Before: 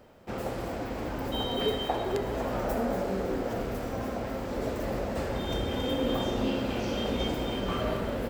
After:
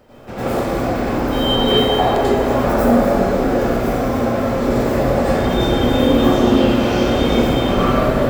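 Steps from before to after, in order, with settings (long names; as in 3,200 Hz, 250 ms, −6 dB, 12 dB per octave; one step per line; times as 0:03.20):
dense smooth reverb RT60 0.96 s, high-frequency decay 0.55×, pre-delay 80 ms, DRR −10 dB
level +4 dB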